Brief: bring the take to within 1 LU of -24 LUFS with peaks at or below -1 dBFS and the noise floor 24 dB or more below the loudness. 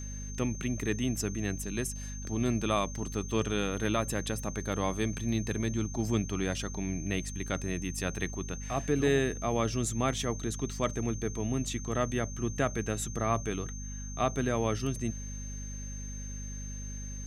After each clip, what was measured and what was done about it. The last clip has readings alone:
hum 50 Hz; harmonics up to 250 Hz; hum level -37 dBFS; steady tone 6300 Hz; tone level -44 dBFS; loudness -32.5 LUFS; peak -15.0 dBFS; loudness target -24.0 LUFS
-> notches 50/100/150/200/250 Hz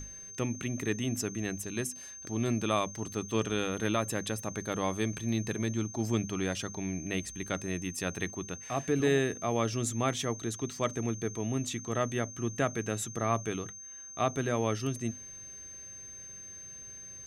hum none; steady tone 6300 Hz; tone level -44 dBFS
-> notch 6300 Hz, Q 30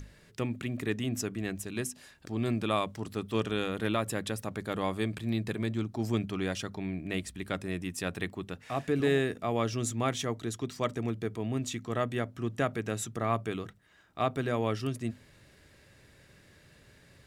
steady tone none; loudness -33.0 LUFS; peak -15.5 dBFS; loudness target -24.0 LUFS
-> gain +9 dB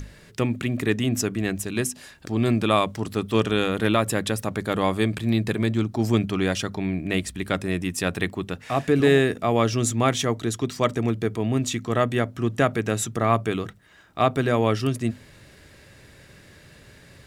loudness -24.0 LUFS; peak -6.5 dBFS; noise floor -51 dBFS

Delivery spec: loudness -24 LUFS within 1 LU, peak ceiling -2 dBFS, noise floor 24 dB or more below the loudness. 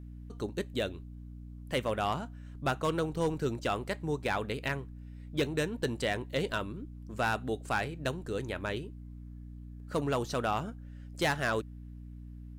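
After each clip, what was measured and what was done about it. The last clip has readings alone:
clipped 0.5%; flat tops at -22.5 dBFS; hum 60 Hz; harmonics up to 300 Hz; hum level -43 dBFS; loudness -33.5 LUFS; peak -22.5 dBFS; loudness target -24.0 LUFS
-> clip repair -22.5 dBFS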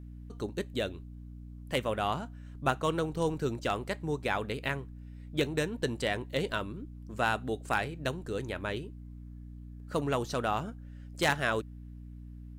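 clipped 0.0%; hum 60 Hz; harmonics up to 300 Hz; hum level -43 dBFS
-> notches 60/120/180/240/300 Hz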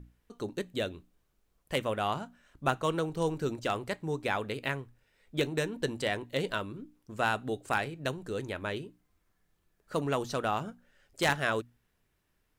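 hum none; loudness -33.0 LUFS; peak -12.5 dBFS; loudness target -24.0 LUFS
-> gain +9 dB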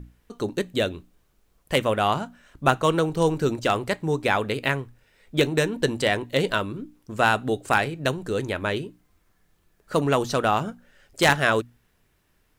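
loudness -24.0 LUFS; peak -3.5 dBFS; noise floor -67 dBFS

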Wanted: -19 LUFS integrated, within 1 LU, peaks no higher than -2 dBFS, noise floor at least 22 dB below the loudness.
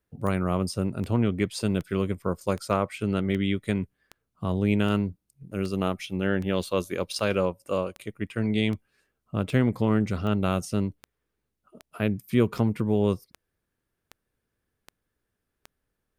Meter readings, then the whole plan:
clicks 21; loudness -27.5 LUFS; peak -9.0 dBFS; loudness target -19.0 LUFS
-> de-click; gain +8.5 dB; limiter -2 dBFS

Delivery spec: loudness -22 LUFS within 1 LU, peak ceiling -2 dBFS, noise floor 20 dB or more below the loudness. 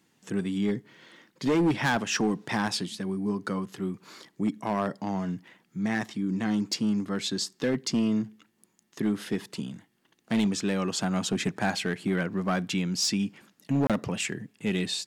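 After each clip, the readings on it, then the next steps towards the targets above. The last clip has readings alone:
clipped 1.4%; flat tops at -19.5 dBFS; dropouts 1; longest dropout 27 ms; loudness -29.0 LUFS; peak -19.5 dBFS; loudness target -22.0 LUFS
-> clip repair -19.5 dBFS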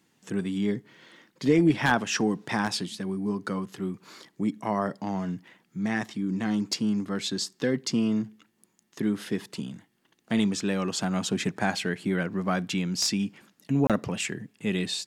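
clipped 0.0%; dropouts 1; longest dropout 27 ms
-> interpolate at 13.87, 27 ms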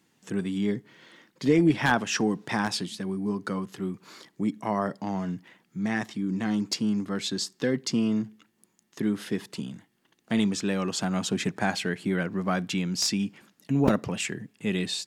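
dropouts 0; loudness -28.0 LUFS; peak -6.0 dBFS; loudness target -22.0 LUFS
-> gain +6 dB; limiter -2 dBFS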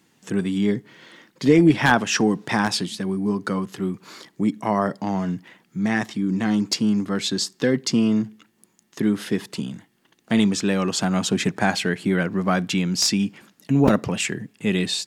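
loudness -22.5 LUFS; peak -2.0 dBFS; noise floor -64 dBFS

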